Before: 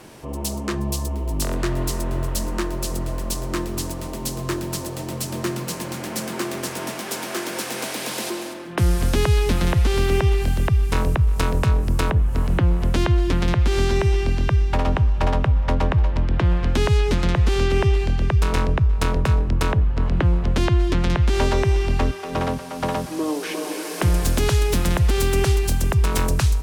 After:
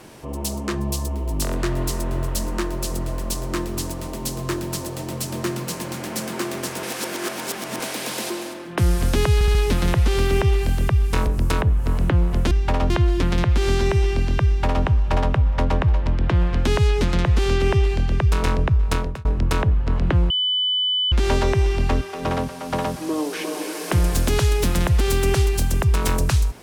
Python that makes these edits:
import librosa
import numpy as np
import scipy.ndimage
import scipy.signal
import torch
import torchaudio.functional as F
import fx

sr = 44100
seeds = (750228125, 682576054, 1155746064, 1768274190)

y = fx.edit(x, sr, fx.reverse_span(start_s=6.83, length_s=0.97),
    fx.stutter(start_s=9.34, slice_s=0.07, count=4),
    fx.cut(start_s=11.06, length_s=0.7),
    fx.duplicate(start_s=14.56, length_s=0.39, to_s=13.0),
    fx.fade_out_span(start_s=19.02, length_s=0.33),
    fx.bleep(start_s=20.4, length_s=0.82, hz=3000.0, db=-18.0), tone=tone)